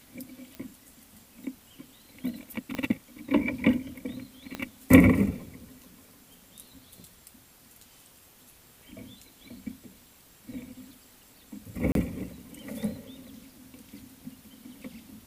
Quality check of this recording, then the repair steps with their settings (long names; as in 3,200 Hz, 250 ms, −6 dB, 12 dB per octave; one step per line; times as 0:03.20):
0:00.55: click −25 dBFS
0:02.75: click −17 dBFS
0:04.55: click −18 dBFS
0:11.92–0:11.95: drop-out 32 ms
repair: click removal
repair the gap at 0:11.92, 32 ms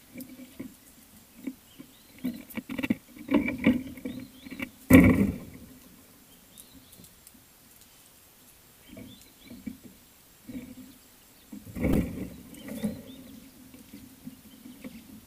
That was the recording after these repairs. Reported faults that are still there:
0:02.75: click
0:04.55: click